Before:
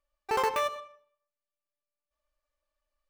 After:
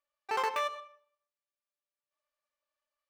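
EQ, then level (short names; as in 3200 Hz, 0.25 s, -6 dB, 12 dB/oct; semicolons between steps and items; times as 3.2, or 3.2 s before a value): HPF 900 Hz 6 dB/oct; high shelf 7400 Hz -11.5 dB; 0.0 dB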